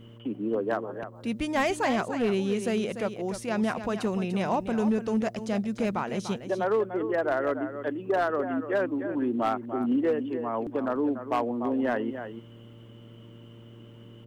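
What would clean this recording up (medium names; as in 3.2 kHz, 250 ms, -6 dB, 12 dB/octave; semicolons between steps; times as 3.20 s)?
clip repair -19 dBFS; de-hum 115.6 Hz, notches 5; inverse comb 294 ms -10 dB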